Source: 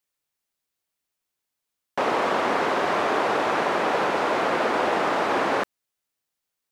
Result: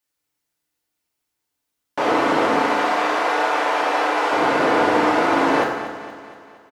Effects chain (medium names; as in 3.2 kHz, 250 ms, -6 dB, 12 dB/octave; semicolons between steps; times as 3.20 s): 2.57–4.32 s: high-pass 570 Hz 12 dB/octave; on a send: feedback delay 234 ms, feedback 53%, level -12 dB; on the sum: FDN reverb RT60 0.98 s, low-frequency decay 1.45×, high-frequency decay 0.7×, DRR -2.5 dB